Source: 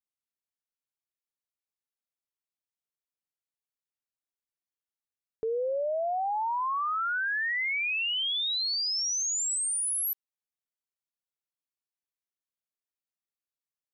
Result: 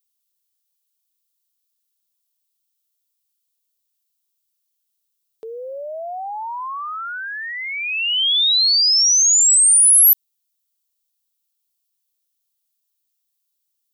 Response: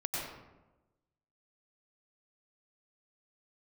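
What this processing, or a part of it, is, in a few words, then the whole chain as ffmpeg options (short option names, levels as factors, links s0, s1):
filter by subtraction: -filter_complex "[0:a]aemphasis=mode=production:type=50kf,highshelf=f=2600:t=q:w=1.5:g=7.5,asplit=2[s0][s1];[s1]lowpass=880,volume=-1[s2];[s0][s2]amix=inputs=2:normalize=0"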